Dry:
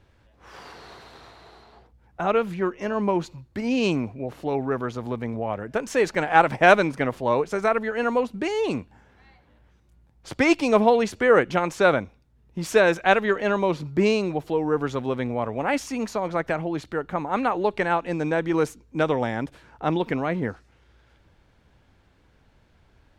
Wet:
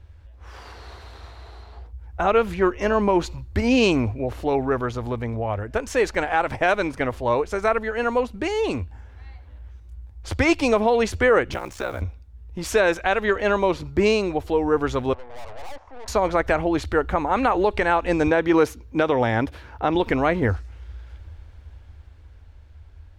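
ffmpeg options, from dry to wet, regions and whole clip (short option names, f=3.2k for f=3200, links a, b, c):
-filter_complex "[0:a]asettb=1/sr,asplit=3[a][b][c];[a]atrim=end=11.534[d];[b]atrim=start=11.53:end=12.02,asetpts=PTS-STARTPTS,afade=t=in:d=0.004:c=qsin,afade=t=out:st=0.486:d=0.004:c=qsin,acrossover=split=120|600[e][f][g];[e]acompressor=threshold=-47dB:ratio=4[h];[f]acompressor=threshold=-33dB:ratio=4[i];[g]acompressor=threshold=-32dB:ratio=4[j];[h][i][j]amix=inputs=3:normalize=0,acrusher=bits=7:mix=0:aa=0.5,aeval=exprs='val(0)*sin(2*PI*32*n/s)':c=same[k];[c]atrim=start=12.016[l];[d][k]acrossfade=d=0.004:c1=hsin:c2=qsin[m];[m][l]acrossfade=d=0.004:c1=qsin:c2=hsin,asettb=1/sr,asplit=3[n][o][p];[n]atrim=end=15.134[q];[o]atrim=start=15.13:end=16.08,asetpts=PTS-STARTPTS,afade=t=in:d=0.004:c=qsin,afade=t=out:st=0.946:d=0.004:c=qsin,aeval=exprs='val(0)+0.5*0.015*sgn(val(0))':c=same,asuperpass=centerf=770:order=4:qfactor=1.5,aeval=exprs='(tanh(141*val(0)+0.7)-tanh(0.7))/141':c=same[r];[p]atrim=start=16.076[s];[q][r]acrossfade=d=0.004:c1=hsin:c2=qsin[t];[t][s]acrossfade=d=0.004:c1=qsin:c2=hsin,asettb=1/sr,asplit=3[u][v][w];[u]atrim=end=18.274[x];[v]atrim=start=18.27:end=19.95,asetpts=PTS-STARTPTS,afade=t=in:d=0.004:c=qsin,afade=t=out:st=1.676:d=0.004:c=qsin,highpass=95,equalizer=f=8k:w=1.8:g=-8[y];[w]atrim=start=19.946[z];[x][y]acrossfade=d=0.004:c1=hsin:c2=qsin[aa];[aa][z]acrossfade=d=0.004:c1=qsin:c2=hsin,lowshelf=f=110:t=q:w=3:g=11,dynaudnorm=f=410:g=11:m=11.5dB,alimiter=limit=-8.5dB:level=0:latency=1:release=139"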